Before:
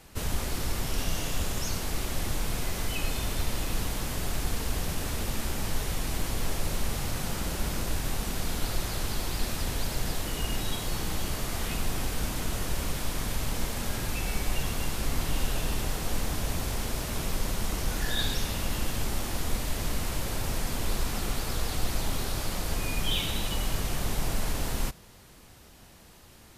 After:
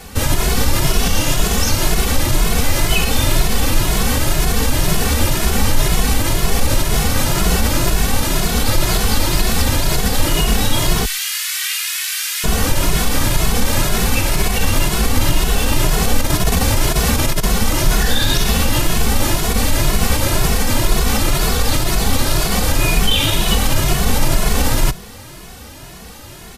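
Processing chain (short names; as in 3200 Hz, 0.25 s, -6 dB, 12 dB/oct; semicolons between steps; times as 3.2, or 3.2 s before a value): 11.05–12.44 inverse Chebyshev high-pass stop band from 290 Hz, stop band 80 dB; 16.2–17.44 negative-ratio compressor -29 dBFS, ratio -0.5; maximiser +21 dB; endless flanger 2.3 ms +2 Hz; gain -1 dB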